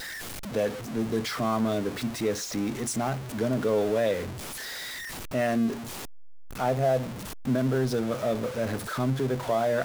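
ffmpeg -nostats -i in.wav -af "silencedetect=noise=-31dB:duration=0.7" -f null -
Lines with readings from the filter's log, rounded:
silence_start: 4.29
silence_end: 5.34 | silence_duration: 1.05
silence_start: 5.73
silence_end: 6.59 | silence_duration: 0.86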